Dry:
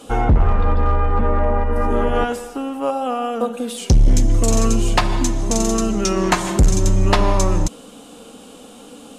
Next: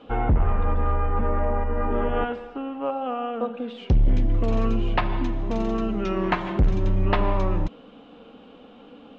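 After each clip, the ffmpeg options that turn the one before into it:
-af "lowpass=f=3.1k:w=0.5412,lowpass=f=3.1k:w=1.3066,volume=-6dB"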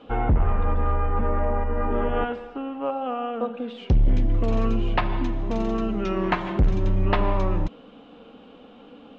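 -af anull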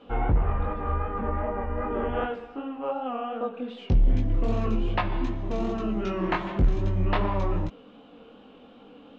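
-af "flanger=delay=19:depth=5.1:speed=2.6"

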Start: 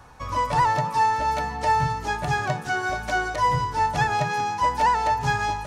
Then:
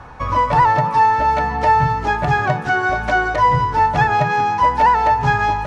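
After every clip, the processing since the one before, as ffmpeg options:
-filter_complex "[0:a]lowpass=1.9k,aemphasis=mode=production:type=75fm,asplit=2[a][b];[b]acompressor=threshold=-29dB:ratio=6,volume=0.5dB[c];[a][c]amix=inputs=2:normalize=0,volume=5dB"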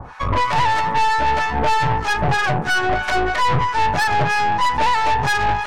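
-filter_complex "[0:a]acrossover=split=940[a][b];[a]aeval=exprs='val(0)*(1-1/2+1/2*cos(2*PI*3.1*n/s))':c=same[c];[b]aeval=exprs='val(0)*(1-1/2-1/2*cos(2*PI*3.1*n/s))':c=same[d];[c][d]amix=inputs=2:normalize=0,acontrast=84,aeval=exprs='(tanh(7.94*val(0)+0.7)-tanh(0.7))/7.94':c=same,volume=3dB"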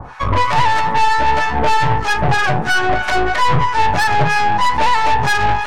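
-af "flanger=delay=6.2:depth=4.5:regen=84:speed=1.4:shape=triangular,volume=7.5dB"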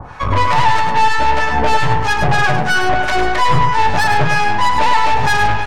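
-af "aecho=1:1:104:0.473"

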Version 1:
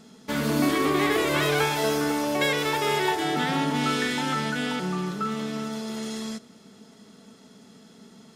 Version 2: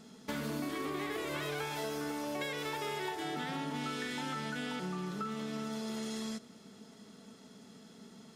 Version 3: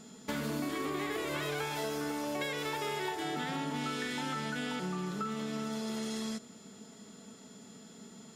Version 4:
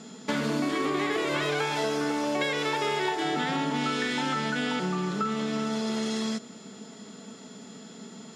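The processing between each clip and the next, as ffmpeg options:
-af "acompressor=threshold=-31dB:ratio=6,volume=-4dB"
-af "aeval=exprs='val(0)+0.000891*sin(2*PI*7100*n/s)':c=same,volume=2dB"
-af "highpass=140,lowpass=6.8k,volume=8dB"

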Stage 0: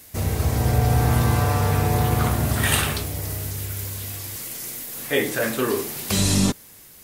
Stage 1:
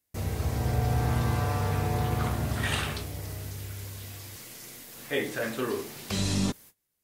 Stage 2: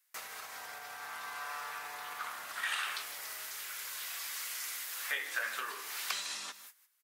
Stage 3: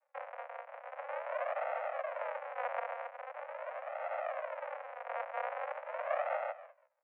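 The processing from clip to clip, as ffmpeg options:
-filter_complex "[0:a]acrossover=split=6900[a][b];[b]acompressor=threshold=-38dB:ratio=4:attack=1:release=60[c];[a][c]amix=inputs=2:normalize=0,agate=range=-26dB:threshold=-41dB:ratio=16:detection=peak,volume=-7.5dB"
-af "acompressor=threshold=-36dB:ratio=6,highpass=f=1.3k:t=q:w=1.6,aecho=1:1:154:0.2,volume=4.5dB"
-af "aresample=11025,acrusher=samples=33:mix=1:aa=0.000001:lfo=1:lforange=33:lforate=0.43,aresample=44100,asoftclip=type=tanh:threshold=-33dB,highpass=f=180:t=q:w=0.5412,highpass=f=180:t=q:w=1.307,lowpass=f=2k:t=q:w=0.5176,lowpass=f=2k:t=q:w=0.7071,lowpass=f=2k:t=q:w=1.932,afreqshift=380,volume=10.5dB"

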